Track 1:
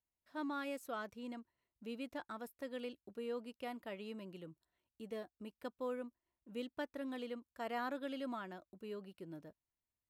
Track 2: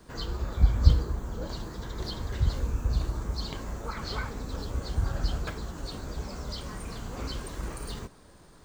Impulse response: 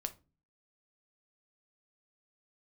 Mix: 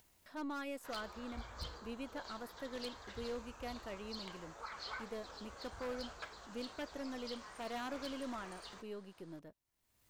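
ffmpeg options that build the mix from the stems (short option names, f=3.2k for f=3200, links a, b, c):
-filter_complex "[0:a]aeval=exprs='if(lt(val(0),0),0.708*val(0),val(0))':c=same,volume=0.5dB[a];[1:a]acrossover=split=550 7300:gain=0.0891 1 0.178[b][c][d];[b][c][d]amix=inputs=3:normalize=0,adelay=750,volume=-7.5dB[e];[a][e]amix=inputs=2:normalize=0,acompressor=mode=upward:threshold=-50dB:ratio=2.5,aeval=exprs='0.0188*(abs(mod(val(0)/0.0188+3,4)-2)-1)':c=same"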